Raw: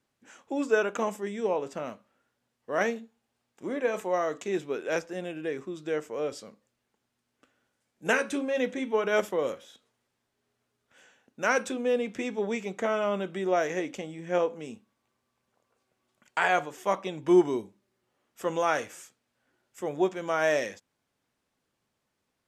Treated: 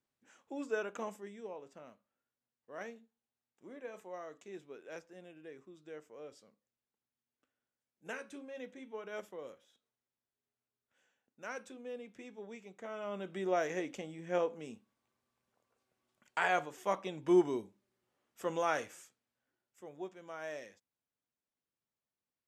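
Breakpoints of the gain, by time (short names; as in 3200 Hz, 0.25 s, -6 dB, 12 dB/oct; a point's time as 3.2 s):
1.12 s -11.5 dB
1.52 s -18 dB
12.81 s -18 dB
13.4 s -6.5 dB
18.85 s -6.5 dB
19.9 s -18 dB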